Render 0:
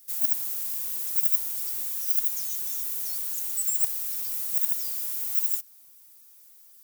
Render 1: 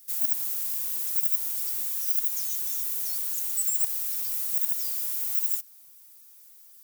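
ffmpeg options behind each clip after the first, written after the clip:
ffmpeg -i in.wav -filter_complex "[0:a]highpass=frequency=100:width=0.5412,highpass=frequency=100:width=1.3066,equalizer=frequency=310:width_type=o:width=2.1:gain=-3.5,asplit=2[link_01][link_02];[link_02]alimiter=limit=-13.5dB:level=0:latency=1:release=86,volume=2dB[link_03];[link_01][link_03]amix=inputs=2:normalize=0,volume=-6dB" out.wav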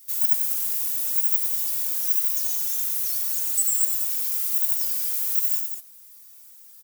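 ffmpeg -i in.wav -filter_complex "[0:a]asplit=2[link_01][link_02];[link_02]aecho=0:1:93.29|195.3:0.398|0.398[link_03];[link_01][link_03]amix=inputs=2:normalize=0,asplit=2[link_04][link_05];[link_05]adelay=2.4,afreqshift=1.3[link_06];[link_04][link_06]amix=inputs=2:normalize=1,volume=6dB" out.wav

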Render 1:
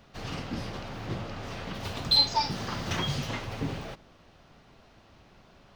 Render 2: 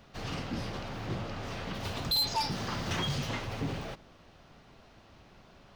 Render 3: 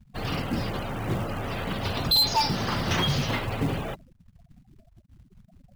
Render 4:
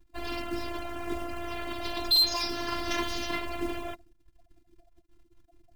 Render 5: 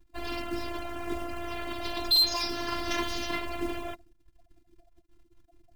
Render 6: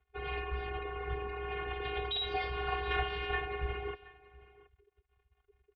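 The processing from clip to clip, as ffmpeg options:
ffmpeg -i in.wav -af "asoftclip=type=tanh:threshold=-25dB" out.wav
ffmpeg -i in.wav -filter_complex "[0:a]afftfilt=real='re*gte(hypot(re,im),0.00708)':imag='im*gte(hypot(re,im),0.00708)':win_size=1024:overlap=0.75,acrossover=split=4900[link_01][link_02];[link_01]acrusher=bits=5:mode=log:mix=0:aa=0.000001[link_03];[link_03][link_02]amix=inputs=2:normalize=0,volume=7.5dB" out.wav
ffmpeg -i in.wav -af "afftfilt=real='hypot(re,im)*cos(PI*b)':imag='0':win_size=512:overlap=0.75" out.wav
ffmpeg -i in.wav -af anull out.wav
ffmpeg -i in.wav -af "aecho=1:1:724:0.0891,highpass=frequency=330:width_type=q:width=0.5412,highpass=frequency=330:width_type=q:width=1.307,lowpass=frequency=3200:width_type=q:width=0.5176,lowpass=frequency=3200:width_type=q:width=0.7071,lowpass=frequency=3200:width_type=q:width=1.932,afreqshift=-280" out.wav

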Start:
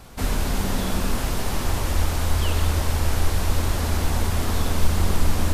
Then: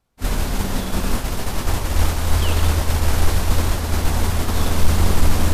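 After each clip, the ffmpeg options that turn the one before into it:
ffmpeg -i in.wav -af "acontrast=53,agate=range=-33dB:threshold=-11dB:ratio=3:detection=peak" out.wav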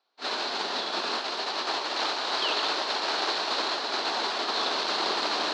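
ffmpeg -i in.wav -af "highpass=frequency=400:width=0.5412,highpass=frequency=400:width=1.3066,equalizer=frequency=510:width_type=q:width=4:gain=-7,equalizer=frequency=2100:width_type=q:width=4:gain=-4,equalizer=frequency=4200:width_type=q:width=4:gain=10,lowpass=frequency=4900:width=0.5412,lowpass=frequency=4900:width=1.3066" out.wav

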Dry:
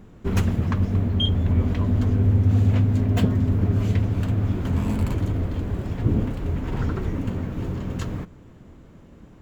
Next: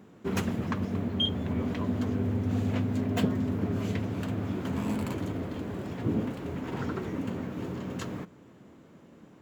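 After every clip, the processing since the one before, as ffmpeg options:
ffmpeg -i in.wav -af "highpass=180,volume=-2.5dB" out.wav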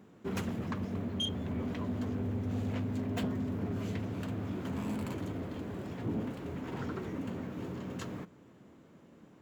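ffmpeg -i in.wav -af "asoftclip=type=tanh:threshold=-23dB,volume=-4dB" out.wav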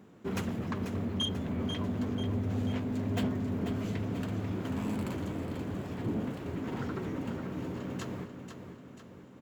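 ffmpeg -i in.wav -af "aecho=1:1:490|980|1470|1960|2450|2940:0.376|0.192|0.0978|0.0499|0.0254|0.013,volume=1.5dB" out.wav

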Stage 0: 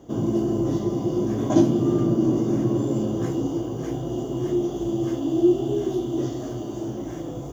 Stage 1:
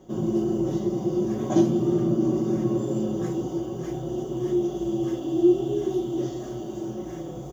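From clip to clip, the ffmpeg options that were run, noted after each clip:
ffmpeg -i in.wav -af "aecho=1:1:5.4:0.65,volume=-4dB" out.wav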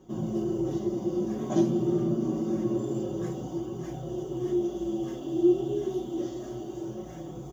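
ffmpeg -i in.wav -af "flanger=delay=0.7:depth=4.8:regen=-59:speed=0.27:shape=triangular" out.wav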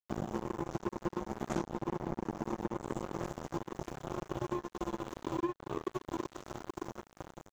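ffmpeg -i in.wav -af "acompressor=threshold=-32dB:ratio=12,acrusher=bits=4:mix=0:aa=0.5,acompressor=mode=upward:threshold=-50dB:ratio=2.5,volume=1dB" out.wav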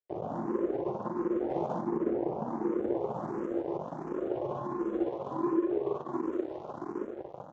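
ffmpeg -i in.wav -filter_complex "[0:a]bandpass=frequency=450:width_type=q:width=1.2:csg=0,aecho=1:1:43.73|137|195.3|279.9:0.794|0.891|1|0.398,asplit=2[link_01][link_02];[link_02]afreqshift=1.4[link_03];[link_01][link_03]amix=inputs=2:normalize=1,volume=7dB" out.wav

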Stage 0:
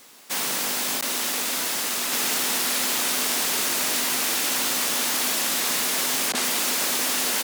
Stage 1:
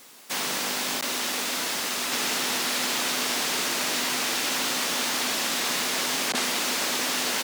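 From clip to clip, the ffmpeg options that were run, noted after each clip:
ffmpeg -i in.wav -filter_complex "[0:a]acrossover=split=6800[link_01][link_02];[link_02]acompressor=threshold=-33dB:ratio=4:attack=1:release=60[link_03];[link_01][link_03]amix=inputs=2:normalize=0" out.wav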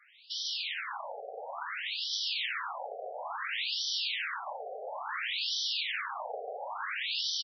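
ffmpeg -i in.wav -af "aecho=1:1:145:0.562,afftfilt=real='re*between(b*sr/1024,550*pow(4300/550,0.5+0.5*sin(2*PI*0.58*pts/sr))/1.41,550*pow(4300/550,0.5+0.5*sin(2*PI*0.58*pts/sr))*1.41)':imag='im*between(b*sr/1024,550*pow(4300/550,0.5+0.5*sin(2*PI*0.58*pts/sr))/1.41,550*pow(4300/550,0.5+0.5*sin(2*PI*0.58*pts/sr))*1.41)':win_size=1024:overlap=0.75,volume=-2.5dB" out.wav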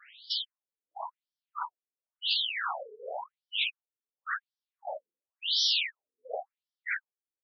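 ffmpeg -i in.wav -af "equalizer=frequency=300:width=1.1:gain=-6.5,afftfilt=real='re*between(b*sr/1024,320*pow(4300/320,0.5+0.5*sin(2*PI*0.93*pts/sr))/1.41,320*pow(4300/320,0.5+0.5*sin(2*PI*0.93*pts/sr))*1.41)':imag='im*between(b*sr/1024,320*pow(4300/320,0.5+0.5*sin(2*PI*0.93*pts/sr))/1.41,320*pow(4300/320,0.5+0.5*sin(2*PI*0.93*pts/sr))*1.41)':win_size=1024:overlap=0.75,volume=7dB" out.wav

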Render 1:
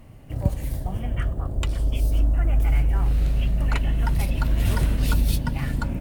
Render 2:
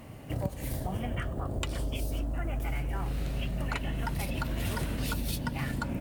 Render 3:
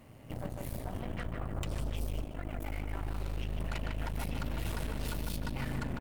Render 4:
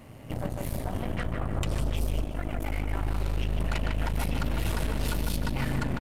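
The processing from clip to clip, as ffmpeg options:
ffmpeg -i in.wav -af "highpass=frequency=170:poles=1,acompressor=threshold=-34dB:ratio=6,volume=5dB" out.wav
ffmpeg -i in.wav -filter_complex "[0:a]asplit=2[link_01][link_02];[link_02]adelay=151,lowpass=frequency=2300:poles=1,volume=-3dB,asplit=2[link_03][link_04];[link_04]adelay=151,lowpass=frequency=2300:poles=1,volume=0.52,asplit=2[link_05][link_06];[link_06]adelay=151,lowpass=frequency=2300:poles=1,volume=0.52,asplit=2[link_07][link_08];[link_08]adelay=151,lowpass=frequency=2300:poles=1,volume=0.52,asplit=2[link_09][link_10];[link_10]adelay=151,lowpass=frequency=2300:poles=1,volume=0.52,asplit=2[link_11][link_12];[link_12]adelay=151,lowpass=frequency=2300:poles=1,volume=0.52,asplit=2[link_13][link_14];[link_14]adelay=151,lowpass=frequency=2300:poles=1,volume=0.52[link_15];[link_01][link_03][link_05][link_07][link_09][link_11][link_13][link_15]amix=inputs=8:normalize=0,aeval=exprs='0.15*(cos(1*acos(clip(val(0)/0.15,-1,1)))-cos(1*PI/2))+0.0211*(cos(8*acos(clip(val(0)/0.15,-1,1)))-cos(8*PI/2))':channel_layout=same,volume=-8.5dB" out.wav
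ffmpeg -i in.wav -af "aecho=1:1:346:0.133,aresample=32000,aresample=44100,volume=7dB" out.wav

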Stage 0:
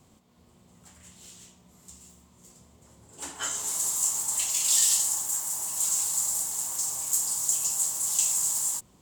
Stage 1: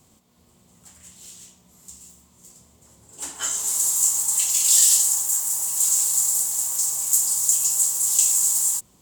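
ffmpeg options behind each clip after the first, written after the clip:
ffmpeg -i in.wav -af "highshelf=frequency=4900:gain=9" out.wav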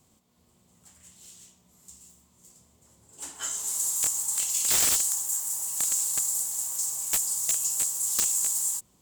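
ffmpeg -i in.wav -af "aeval=exprs='(mod(2.66*val(0)+1,2)-1)/2.66':channel_layout=same,volume=-6.5dB" out.wav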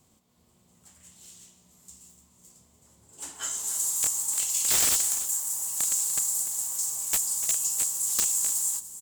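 ffmpeg -i in.wav -af "aecho=1:1:295:0.188" out.wav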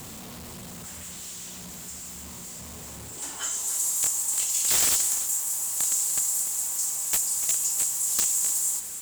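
ffmpeg -i in.wav -af "aeval=exprs='val(0)+0.5*0.0178*sgn(val(0))':channel_layout=same" out.wav

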